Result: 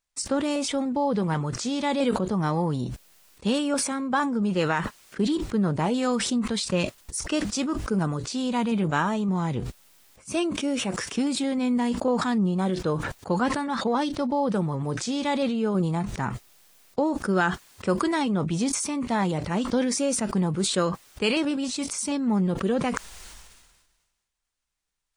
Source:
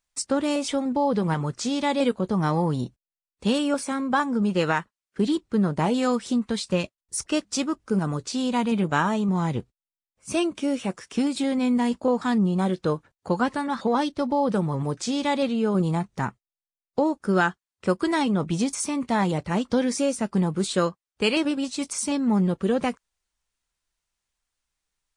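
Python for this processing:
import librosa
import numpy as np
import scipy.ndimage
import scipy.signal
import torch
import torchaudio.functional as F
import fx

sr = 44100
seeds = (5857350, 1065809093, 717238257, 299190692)

y = fx.sustainer(x, sr, db_per_s=42.0)
y = F.gain(torch.from_numpy(y), -2.0).numpy()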